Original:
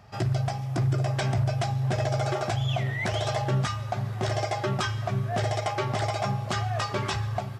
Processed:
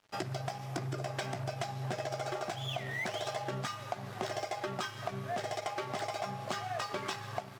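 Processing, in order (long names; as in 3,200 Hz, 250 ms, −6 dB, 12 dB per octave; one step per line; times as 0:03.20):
Bessel high-pass filter 220 Hz, order 6
downward compressor, threshold −34 dBFS, peak gain reduction 9.5 dB
dead-zone distortion −52 dBFS
level +1.5 dB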